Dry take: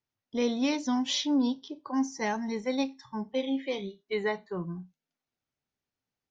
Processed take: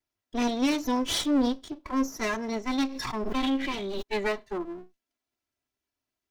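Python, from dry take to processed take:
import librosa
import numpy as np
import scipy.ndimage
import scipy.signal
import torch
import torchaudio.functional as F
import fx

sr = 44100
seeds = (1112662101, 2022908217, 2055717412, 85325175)

y = fx.lower_of_two(x, sr, delay_ms=3.0)
y = fx.pre_swell(y, sr, db_per_s=25.0, at=(2.81, 4.01), fade=0.02)
y = F.gain(torch.from_numpy(y), 3.0).numpy()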